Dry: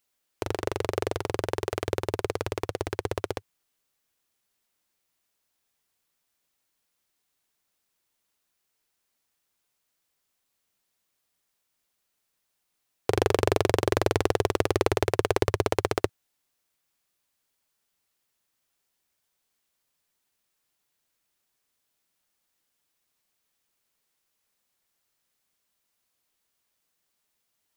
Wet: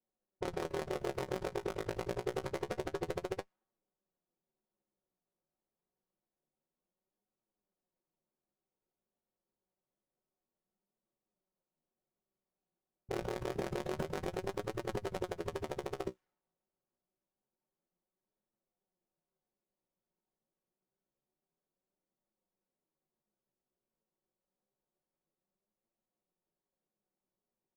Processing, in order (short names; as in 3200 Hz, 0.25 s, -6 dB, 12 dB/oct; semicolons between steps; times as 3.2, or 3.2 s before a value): local time reversal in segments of 34 ms; low-pass opened by the level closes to 570 Hz, open at -26 dBFS; bell 80 Hz -12 dB 0.83 oct; notch 2500 Hz, Q 25; comb 5.4 ms, depth 47%; negative-ratio compressor -29 dBFS, ratio -1; limiter -19 dBFS, peak gain reduction 10.5 dB; flange 0.27 Hz, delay 8.6 ms, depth 10 ms, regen +36%; running maximum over 9 samples